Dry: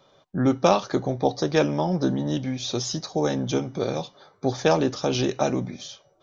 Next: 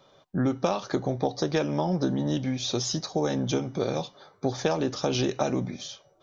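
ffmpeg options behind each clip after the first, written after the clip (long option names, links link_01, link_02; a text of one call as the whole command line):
ffmpeg -i in.wav -af "acompressor=threshold=-21dB:ratio=10" out.wav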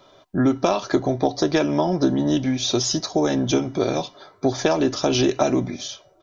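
ffmpeg -i in.wav -af "aecho=1:1:3:0.43,volume=6dB" out.wav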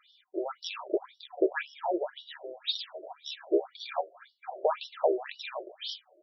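ffmpeg -i in.wav -af "afftfilt=real='re*between(b*sr/1024,460*pow(4100/460,0.5+0.5*sin(2*PI*1.9*pts/sr))/1.41,460*pow(4100/460,0.5+0.5*sin(2*PI*1.9*pts/sr))*1.41)':imag='im*between(b*sr/1024,460*pow(4100/460,0.5+0.5*sin(2*PI*1.9*pts/sr))/1.41,460*pow(4100/460,0.5+0.5*sin(2*PI*1.9*pts/sr))*1.41)':win_size=1024:overlap=0.75,volume=-1.5dB" out.wav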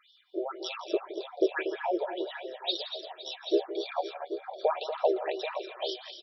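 ffmpeg -i in.wav -af "aecho=1:1:167|238|512|784:0.2|0.355|0.15|0.316" out.wav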